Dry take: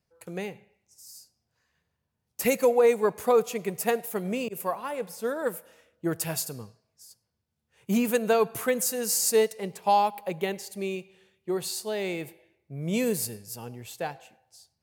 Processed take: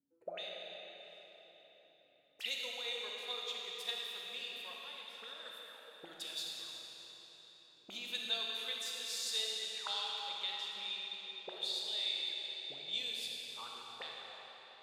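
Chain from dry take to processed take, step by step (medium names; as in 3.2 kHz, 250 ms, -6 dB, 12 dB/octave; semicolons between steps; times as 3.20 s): auto-wah 280–3600 Hz, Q 17, up, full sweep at -30 dBFS; algorithmic reverb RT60 4.3 s, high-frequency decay 0.9×, pre-delay 0 ms, DRR -2.5 dB; trim +10.5 dB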